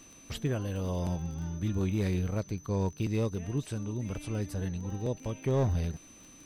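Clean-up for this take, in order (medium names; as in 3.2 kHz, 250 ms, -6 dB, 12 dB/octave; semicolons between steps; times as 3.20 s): clip repair -21.5 dBFS; de-click; band-stop 6.1 kHz, Q 30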